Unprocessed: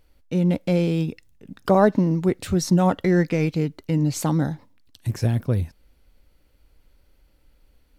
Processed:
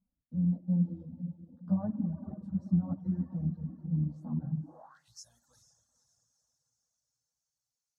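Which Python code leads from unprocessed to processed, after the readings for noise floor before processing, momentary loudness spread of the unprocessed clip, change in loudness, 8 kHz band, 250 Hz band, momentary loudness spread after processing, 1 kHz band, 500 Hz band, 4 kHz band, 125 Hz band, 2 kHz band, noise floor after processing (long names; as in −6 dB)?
−60 dBFS, 11 LU, −11.5 dB, below −20 dB, −10.5 dB, 18 LU, −26.5 dB, −28.5 dB, below −20 dB, −10.5 dB, below −35 dB, below −85 dBFS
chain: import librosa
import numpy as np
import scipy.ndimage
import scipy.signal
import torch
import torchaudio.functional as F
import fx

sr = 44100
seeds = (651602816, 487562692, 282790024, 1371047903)

p1 = fx.octave_divider(x, sr, octaves=1, level_db=-5.0)
p2 = fx.peak_eq(p1, sr, hz=2900.0, db=-7.5, octaves=0.48)
p3 = fx.fixed_phaser(p2, sr, hz=950.0, stages=4)
p4 = fx.rev_spring(p3, sr, rt60_s=2.1, pass_ms=(51, 59), chirp_ms=40, drr_db=4.5)
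p5 = fx.chorus_voices(p4, sr, voices=4, hz=0.3, base_ms=16, depth_ms=4.7, mix_pct=65)
p6 = p5 + fx.echo_diffused(p5, sr, ms=471, feedback_pct=51, wet_db=-13.0, dry=0)
p7 = fx.filter_sweep_bandpass(p6, sr, from_hz=210.0, to_hz=6400.0, start_s=4.63, end_s=5.2, q=4.1)
y = fx.dereverb_blind(p7, sr, rt60_s=0.82)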